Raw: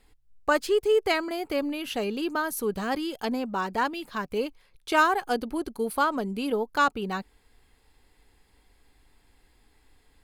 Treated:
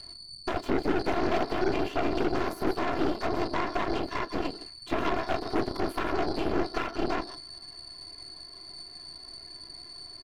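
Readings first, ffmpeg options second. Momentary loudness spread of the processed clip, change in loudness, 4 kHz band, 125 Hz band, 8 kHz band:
14 LU, −3.0 dB, −1.0 dB, can't be measured, −8.0 dB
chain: -filter_complex "[0:a]aeval=exprs='val(0)+0.00708*sin(2*PI*4500*n/s)':channel_layout=same,asplit=2[link_01][link_02];[link_02]highpass=frequency=720:poles=1,volume=27dB,asoftclip=type=tanh:threshold=-9dB[link_03];[link_01][link_03]amix=inputs=2:normalize=0,lowpass=frequency=1000:poles=1,volume=-6dB,afftfilt=real='hypot(re,im)*cos(PI*b)':imag='0':win_size=512:overlap=0.75,asplit=2[link_04][link_05];[link_05]adelay=32,volume=-9dB[link_06];[link_04][link_06]amix=inputs=2:normalize=0,acompressor=threshold=-28dB:ratio=2,equalizer=frequency=110:width_type=o:width=1.6:gain=-2,aecho=1:1:154:0.168,acrossover=split=690|1500[link_07][link_08][link_09];[link_08]acompressor=threshold=-32dB:ratio=4[link_10];[link_09]acompressor=threshold=-43dB:ratio=4[link_11];[link_07][link_10][link_11]amix=inputs=3:normalize=0,lowshelf=frequency=230:gain=-3,afftfilt=real='hypot(re,im)*cos(2*PI*random(0))':imag='hypot(re,im)*sin(2*PI*random(1))':win_size=512:overlap=0.75,aeval=exprs='0.106*(cos(1*acos(clip(val(0)/0.106,-1,1)))-cos(1*PI/2))+0.0211*(cos(8*acos(clip(val(0)/0.106,-1,1)))-cos(8*PI/2))':channel_layout=same,volume=4dB"

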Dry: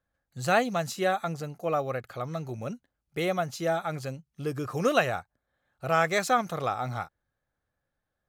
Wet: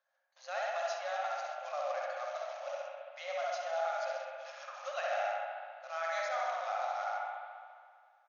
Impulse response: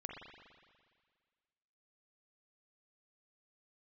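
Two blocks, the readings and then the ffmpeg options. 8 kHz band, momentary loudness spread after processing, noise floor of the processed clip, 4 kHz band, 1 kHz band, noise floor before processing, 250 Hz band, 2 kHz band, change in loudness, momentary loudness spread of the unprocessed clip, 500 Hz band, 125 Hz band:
−11.5 dB, 11 LU, −68 dBFS, −8.5 dB, −5.5 dB, −84 dBFS, below −40 dB, −8.0 dB, −8.5 dB, 13 LU, −7.5 dB, below −40 dB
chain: -filter_complex "[0:a]aecho=1:1:67|134|201|268|335:0.501|0.226|0.101|0.0457|0.0206,acrusher=bits=3:mode=log:mix=0:aa=0.000001,areverse,acompressor=threshold=-39dB:ratio=4,areverse[link_01];[1:a]atrim=start_sample=2205,asetrate=38367,aresample=44100[link_02];[link_01][link_02]afir=irnorm=-1:irlink=0,afftfilt=real='re*between(b*sr/4096,520,6800)':imag='im*between(b*sr/4096,520,6800)':win_size=4096:overlap=0.75,volume=5.5dB"

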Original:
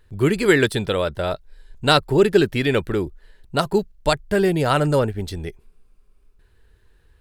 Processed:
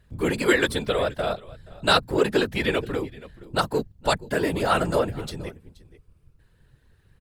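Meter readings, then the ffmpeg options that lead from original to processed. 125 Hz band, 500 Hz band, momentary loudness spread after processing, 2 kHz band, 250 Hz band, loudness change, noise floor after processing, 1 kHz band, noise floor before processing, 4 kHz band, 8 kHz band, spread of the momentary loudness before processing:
−8.0 dB, −5.0 dB, 13 LU, −2.0 dB, −5.5 dB, −4.0 dB, −61 dBFS, −2.0 dB, −57 dBFS, −2.0 dB, −1.5 dB, 12 LU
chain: -filter_complex "[0:a]bandreject=frequency=60:width_type=h:width=6,bandreject=frequency=120:width_type=h:width=6,aecho=1:1:476:0.0841,acrossover=split=420|1400[link_01][link_02][link_03];[link_01]asoftclip=type=tanh:threshold=-25dB[link_04];[link_04][link_02][link_03]amix=inputs=3:normalize=0,afftfilt=real='hypot(re,im)*cos(2*PI*random(0))':imag='hypot(re,im)*sin(2*PI*random(1))':win_size=512:overlap=0.75,volume=4dB"

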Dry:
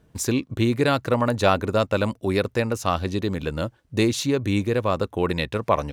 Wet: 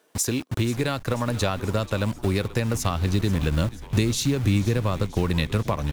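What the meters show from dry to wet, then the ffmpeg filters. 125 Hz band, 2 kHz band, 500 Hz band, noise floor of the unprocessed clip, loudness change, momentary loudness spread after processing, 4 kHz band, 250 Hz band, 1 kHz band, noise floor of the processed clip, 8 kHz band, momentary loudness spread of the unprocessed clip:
+3.5 dB, −3.0 dB, −5.5 dB, −60 dBFS, −1.5 dB, 4 LU, −0.5 dB, −1.5 dB, −6.0 dB, −42 dBFS, +3.5 dB, 6 LU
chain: -filter_complex "[0:a]highshelf=frequency=4400:gain=7,acrossover=split=330|4500[link_01][link_02][link_03];[link_01]acrusher=bits=5:mix=0:aa=0.000001[link_04];[link_04][link_02][link_03]amix=inputs=3:normalize=0,acompressor=threshold=-25dB:ratio=5,asubboost=boost=3:cutoff=240,asplit=6[link_05][link_06][link_07][link_08][link_09][link_10];[link_06]adelay=485,afreqshift=-120,volume=-16dB[link_11];[link_07]adelay=970,afreqshift=-240,volume=-20.9dB[link_12];[link_08]adelay=1455,afreqshift=-360,volume=-25.8dB[link_13];[link_09]adelay=1940,afreqshift=-480,volume=-30.6dB[link_14];[link_10]adelay=2425,afreqshift=-600,volume=-35.5dB[link_15];[link_05][link_11][link_12][link_13][link_14][link_15]amix=inputs=6:normalize=0,volume=2.5dB"

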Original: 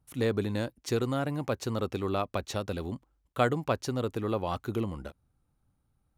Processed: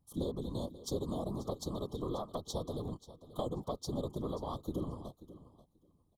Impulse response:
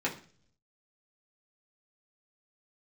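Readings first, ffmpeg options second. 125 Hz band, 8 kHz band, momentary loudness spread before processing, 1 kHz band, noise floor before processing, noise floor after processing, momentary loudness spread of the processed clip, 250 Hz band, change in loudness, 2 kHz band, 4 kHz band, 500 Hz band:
−8.0 dB, −4.5 dB, 8 LU, −10.0 dB, −75 dBFS, −73 dBFS, 9 LU, −6.5 dB, −8.0 dB, below −35 dB, −6.5 dB, −8.0 dB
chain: -filter_complex "[0:a]afftfilt=real='re*(1-between(b*sr/4096,1200,3100))':imag='im*(1-between(b*sr/4096,1200,3100))':win_size=4096:overlap=0.75,acompressor=threshold=-30dB:ratio=5,afftfilt=real='hypot(re,im)*cos(2*PI*random(0))':imag='hypot(re,im)*sin(2*PI*random(1))':win_size=512:overlap=0.75,asplit=2[link_01][link_02];[link_02]aecho=0:1:535|1070:0.158|0.0254[link_03];[link_01][link_03]amix=inputs=2:normalize=0,volume=2.5dB"

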